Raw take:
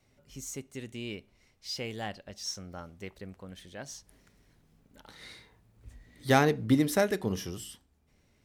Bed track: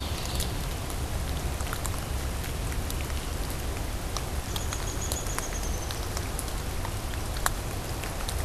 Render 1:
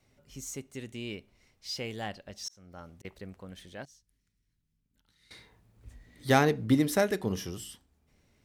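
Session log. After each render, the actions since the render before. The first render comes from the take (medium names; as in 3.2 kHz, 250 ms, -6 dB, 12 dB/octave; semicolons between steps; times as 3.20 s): 2.38–3.05 s: slow attack 470 ms; 3.85–5.31 s: amplifier tone stack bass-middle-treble 6-0-2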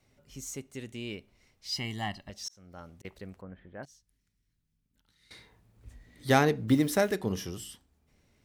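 1.72–2.30 s: comb 1 ms, depth 90%; 3.41–3.83 s: low-pass 1.8 kHz 24 dB/octave; 6.68–7.15 s: send-on-delta sampling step -49 dBFS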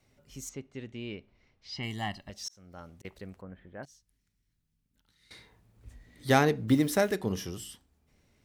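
0.49–1.83 s: distance through air 180 m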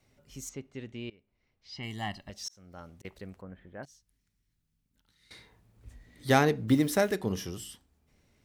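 1.10–2.18 s: fade in, from -23.5 dB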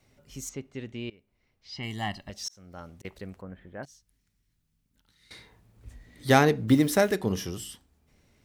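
trim +3.5 dB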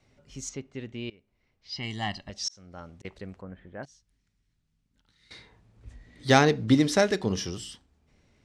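Bessel low-pass 6.4 kHz, order 4; dynamic bell 5 kHz, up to +7 dB, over -51 dBFS, Q 1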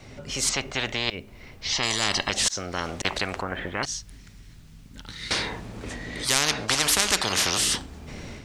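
level rider gain up to 8 dB; spectrum-flattening compressor 10:1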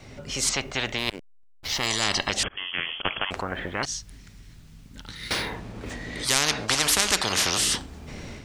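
0.98–1.87 s: hysteresis with a dead band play -26.5 dBFS; 2.43–3.31 s: frequency inversion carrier 3.3 kHz; 5.15–5.92 s: decimation joined by straight lines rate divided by 3×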